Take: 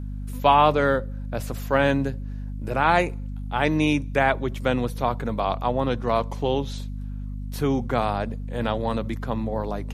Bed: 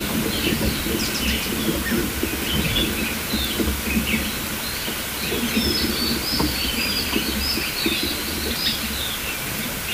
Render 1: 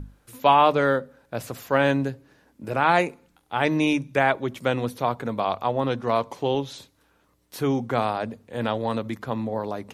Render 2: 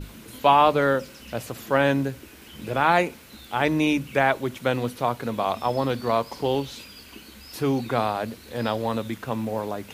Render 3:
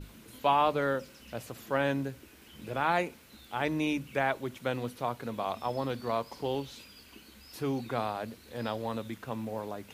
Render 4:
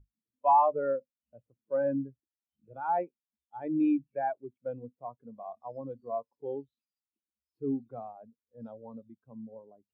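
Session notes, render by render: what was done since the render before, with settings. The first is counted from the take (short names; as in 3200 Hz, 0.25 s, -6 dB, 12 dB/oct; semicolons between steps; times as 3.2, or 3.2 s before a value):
notches 50/100/150/200/250 Hz
add bed -22 dB
gain -8.5 dB
sample leveller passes 1; spectral expander 2.5:1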